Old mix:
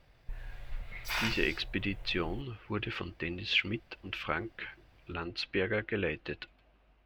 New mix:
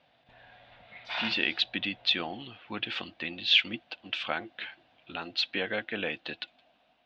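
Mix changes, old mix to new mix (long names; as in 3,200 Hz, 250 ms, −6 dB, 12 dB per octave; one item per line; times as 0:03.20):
speech: remove high-frequency loss of the air 330 metres
master: add loudspeaker in its box 220–3,800 Hz, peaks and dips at 240 Hz +4 dB, 390 Hz −10 dB, 710 Hz +8 dB, 1,200 Hz −4 dB, 2,100 Hz −3 dB, 3,600 Hz +6 dB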